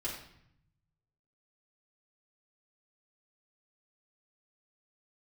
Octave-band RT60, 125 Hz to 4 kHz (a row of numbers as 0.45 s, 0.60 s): 1.6 s, 1.0 s, 0.70 s, 0.70 s, 0.70 s, 0.60 s